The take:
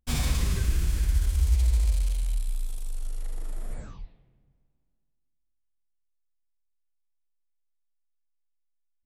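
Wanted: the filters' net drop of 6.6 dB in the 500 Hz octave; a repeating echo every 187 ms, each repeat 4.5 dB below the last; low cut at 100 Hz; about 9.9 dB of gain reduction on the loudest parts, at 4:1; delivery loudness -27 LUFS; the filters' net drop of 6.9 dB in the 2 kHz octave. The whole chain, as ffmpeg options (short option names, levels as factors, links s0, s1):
-af "highpass=100,equalizer=f=500:t=o:g=-8.5,equalizer=f=2000:t=o:g=-8.5,acompressor=threshold=0.01:ratio=4,aecho=1:1:187|374|561|748|935|1122|1309|1496|1683:0.596|0.357|0.214|0.129|0.0772|0.0463|0.0278|0.0167|0.01,volume=6.31"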